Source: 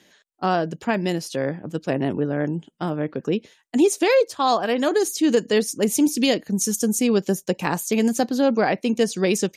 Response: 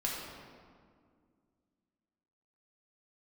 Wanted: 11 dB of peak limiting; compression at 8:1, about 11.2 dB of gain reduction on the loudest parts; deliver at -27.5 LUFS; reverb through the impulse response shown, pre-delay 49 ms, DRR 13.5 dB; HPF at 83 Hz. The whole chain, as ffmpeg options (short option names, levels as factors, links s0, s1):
-filter_complex "[0:a]highpass=83,acompressor=threshold=0.0562:ratio=8,alimiter=limit=0.0668:level=0:latency=1,asplit=2[s0][s1];[1:a]atrim=start_sample=2205,adelay=49[s2];[s1][s2]afir=irnorm=-1:irlink=0,volume=0.126[s3];[s0][s3]amix=inputs=2:normalize=0,volume=1.88"